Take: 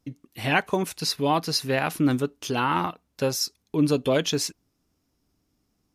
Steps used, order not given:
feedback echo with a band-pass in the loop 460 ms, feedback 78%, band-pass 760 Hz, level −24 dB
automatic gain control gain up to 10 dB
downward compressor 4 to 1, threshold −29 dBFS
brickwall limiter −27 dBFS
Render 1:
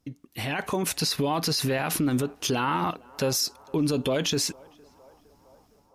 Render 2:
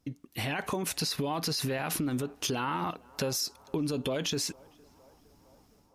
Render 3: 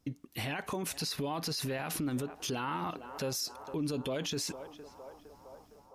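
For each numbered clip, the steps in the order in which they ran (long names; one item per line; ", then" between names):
brickwall limiter, then downward compressor, then automatic gain control, then feedback echo with a band-pass in the loop
brickwall limiter, then automatic gain control, then downward compressor, then feedback echo with a band-pass in the loop
downward compressor, then automatic gain control, then feedback echo with a band-pass in the loop, then brickwall limiter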